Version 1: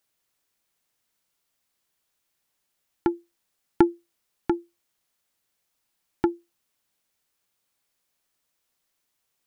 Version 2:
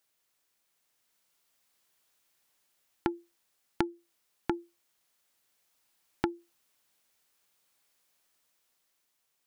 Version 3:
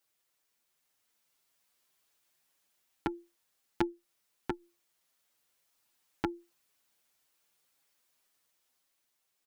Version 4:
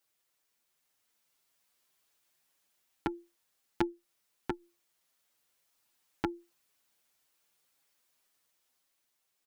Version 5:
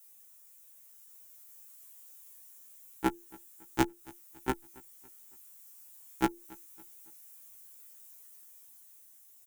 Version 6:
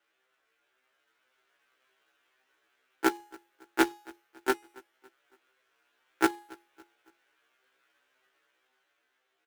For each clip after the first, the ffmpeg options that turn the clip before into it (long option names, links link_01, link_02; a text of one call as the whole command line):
ffmpeg -i in.wav -af "dynaudnorm=framelen=340:gausssize=7:maxgain=4dB,lowshelf=frequency=250:gain=-6,acompressor=threshold=-26dB:ratio=16" out.wav
ffmpeg -i in.wav -filter_complex "[0:a]asplit=2[link_01][link_02];[link_02]adelay=6.7,afreqshift=1.9[link_03];[link_01][link_03]amix=inputs=2:normalize=1,volume=1dB" out.wav
ffmpeg -i in.wav -af anull out.wav
ffmpeg -i in.wav -af "aecho=1:1:279|558|837:0.0631|0.0278|0.0122,aexciter=amount=4.5:drive=6.1:freq=6300,afftfilt=real='re*1.73*eq(mod(b,3),0)':imag='im*1.73*eq(mod(b,3),0)':win_size=2048:overlap=0.75,volume=8.5dB" out.wav
ffmpeg -i in.wav -af "highpass=frequency=300:width=0.5412,highpass=frequency=300:width=1.3066,equalizer=frequency=400:width_type=q:width=4:gain=5,equalizer=frequency=960:width_type=q:width=4:gain=-3,equalizer=frequency=1500:width_type=q:width=4:gain=8,lowpass=frequency=3200:width=0.5412,lowpass=frequency=3200:width=1.3066,acrusher=bits=2:mode=log:mix=0:aa=0.000001,bandreject=frequency=416.4:width_type=h:width=4,bandreject=frequency=832.8:width_type=h:width=4,bandreject=frequency=1249.2:width_type=h:width=4,bandreject=frequency=1665.6:width_type=h:width=4,bandreject=frequency=2082:width_type=h:width=4,bandreject=frequency=2498.4:width_type=h:width=4,bandreject=frequency=2914.8:width_type=h:width=4,bandreject=frequency=3331.2:width_type=h:width=4,bandreject=frequency=3747.6:width_type=h:width=4,bandreject=frequency=4164:width_type=h:width=4,bandreject=frequency=4580.4:width_type=h:width=4,bandreject=frequency=4996.8:width_type=h:width=4,bandreject=frequency=5413.2:width_type=h:width=4,bandreject=frequency=5829.6:width_type=h:width=4,bandreject=frequency=6246:width_type=h:width=4,bandreject=frequency=6662.4:width_type=h:width=4,bandreject=frequency=7078.8:width_type=h:width=4,bandreject=frequency=7495.2:width_type=h:width=4,bandreject=frequency=7911.6:width_type=h:width=4,bandreject=frequency=8328:width_type=h:width=4,bandreject=frequency=8744.4:width_type=h:width=4,bandreject=frequency=9160.8:width_type=h:width=4,bandreject=frequency=9577.2:width_type=h:width=4,bandreject=frequency=9993.6:width_type=h:width=4,bandreject=frequency=10410:width_type=h:width=4,bandreject=frequency=10826.4:width_type=h:width=4,bandreject=frequency=11242.8:width_type=h:width=4,bandreject=frequency=11659.2:width_type=h:width=4,bandreject=frequency=12075.6:width_type=h:width=4,bandreject=frequency=12492:width_type=h:width=4,bandreject=frequency=12908.4:width_type=h:width=4,bandreject=frequency=13324.8:width_type=h:width=4,bandreject=frequency=13741.2:width_type=h:width=4,bandreject=frequency=14157.6:width_type=h:width=4,bandreject=frequency=14574:width_type=h:width=4,bandreject=frequency=14990.4:width_type=h:width=4,bandreject=frequency=15406.8:width_type=h:width=4,bandreject=frequency=15823.2:width_type=h:width=4,bandreject=frequency=16239.6:width_type=h:width=4,volume=3dB" out.wav